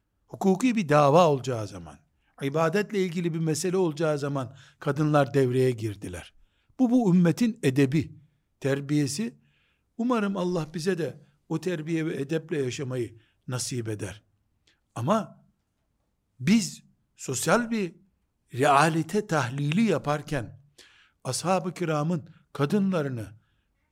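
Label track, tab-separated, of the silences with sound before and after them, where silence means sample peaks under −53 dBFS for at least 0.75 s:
15.400000	16.400000	silence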